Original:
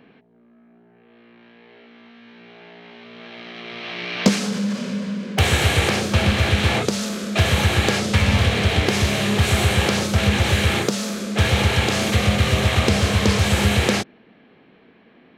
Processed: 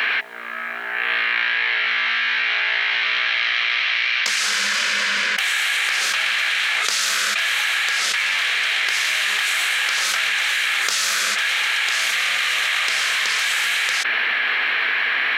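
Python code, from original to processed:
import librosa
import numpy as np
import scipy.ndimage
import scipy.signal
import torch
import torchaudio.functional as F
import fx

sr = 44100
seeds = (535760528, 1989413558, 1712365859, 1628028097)

y = fx.highpass_res(x, sr, hz=1700.0, q=1.9)
y = fx.env_flatten(y, sr, amount_pct=100)
y = y * 10.0 ** (-3.0 / 20.0)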